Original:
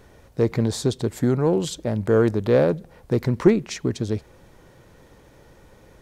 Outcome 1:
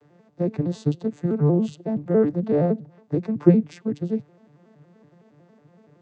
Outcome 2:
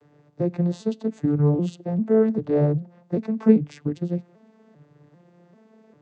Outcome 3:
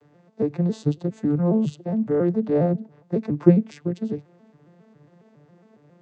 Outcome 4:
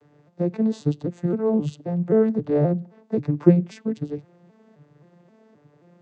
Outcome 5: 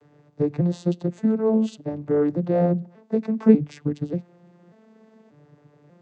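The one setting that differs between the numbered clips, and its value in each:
arpeggiated vocoder, a note every: 93, 395, 137, 264, 589 ms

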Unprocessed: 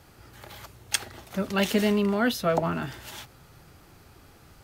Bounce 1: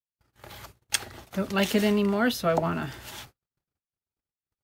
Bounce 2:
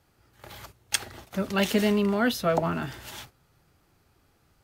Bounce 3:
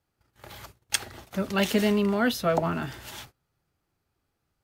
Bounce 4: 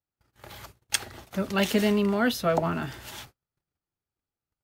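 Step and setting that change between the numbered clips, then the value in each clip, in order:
gate, range: -57, -12, -25, -40 dB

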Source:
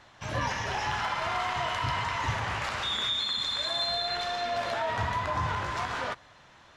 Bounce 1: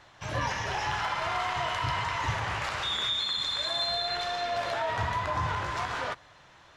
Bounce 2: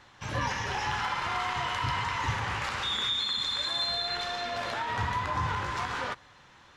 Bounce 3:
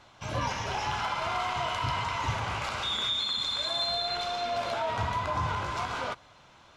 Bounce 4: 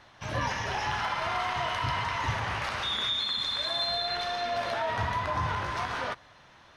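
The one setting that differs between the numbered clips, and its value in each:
notch, frequency: 230, 650, 1800, 7300 Hz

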